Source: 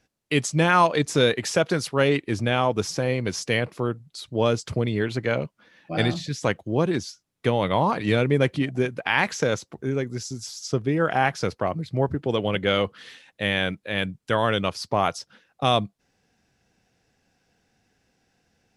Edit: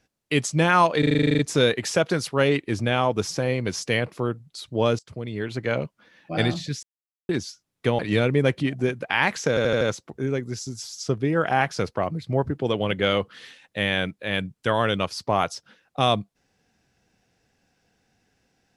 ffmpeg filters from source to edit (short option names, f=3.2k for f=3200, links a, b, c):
-filter_complex "[0:a]asplit=19[a][b][c][d][e][f][g][h][i][j][k][l][m][n][o][p][q][r][s];[a]atrim=end=1.032[t];[b]atrim=start=0.988:end=1.032[u];[c]atrim=start=0.988:end=1.032[v];[d]atrim=start=0.988:end=1.032[w];[e]atrim=start=0.988:end=1.032[x];[f]atrim=start=0.988:end=1.032[y];[g]atrim=start=0.988:end=1.032[z];[h]atrim=start=0.988:end=1.032[aa];[i]atrim=start=0.988:end=1.032[ab];[j]atrim=start=0.988:end=1.032[ac];[k]atrim=start=0.988:end=4.59,asetpts=PTS-STARTPTS,afade=t=out:st=3.598:d=0.004:c=hsin:silence=0.11885[ad];[l]atrim=start=4.59:end=6.43,asetpts=PTS-STARTPTS,afade=t=in:d=0.8:silence=0.11885,afade=t=out:st=1.836:d=0.004:c=hsin[ae];[m]atrim=start=6.43:end=6.89,asetpts=PTS-STARTPTS,volume=0[af];[n]atrim=start=6.89:end=7.592,asetpts=PTS-STARTPTS,afade=t=in:d=0.004:c=hsin[ag];[o]atrim=start=7.948:end=9.532[ah];[p]atrim=start=9.448:end=9.532[ai];[q]atrim=start=9.448:end=9.532[aj];[r]atrim=start=9.448:end=9.532[ak];[s]atrim=start=9.448[al];[t][u]acrossfade=d=0.004:c1=hsin:c2=hsin[am];[am][v]acrossfade=d=0.004:c1=hsin:c2=hsin[an];[an][w]acrossfade=d=0.004:c1=hsin:c2=hsin[ao];[ao][x]acrossfade=d=0.004:c1=hsin:c2=hsin[ap];[ap][y]acrossfade=d=0.004:c1=hsin:c2=hsin[aq];[aq][z]acrossfade=d=0.004:c1=hsin:c2=hsin[ar];[ar][aa]acrossfade=d=0.004:c1=hsin:c2=hsin[as];[as][ab]acrossfade=d=0.004:c1=hsin:c2=hsin[at];[at][ac]acrossfade=d=0.004:c1=hsin:c2=hsin[au];[ad][ae][af][ag]concat=n=4:v=0:a=1[av];[au][av]acrossfade=d=0.004:c1=hsin:c2=hsin[aw];[aw][ah]acrossfade=d=0.004:c1=hsin:c2=hsin[ax];[ax][ai]acrossfade=d=0.004:c1=hsin:c2=hsin[ay];[ay][aj]acrossfade=d=0.004:c1=hsin:c2=hsin[az];[az][ak]acrossfade=d=0.004:c1=hsin:c2=hsin[ba];[ba][al]acrossfade=d=0.004:c1=hsin:c2=hsin"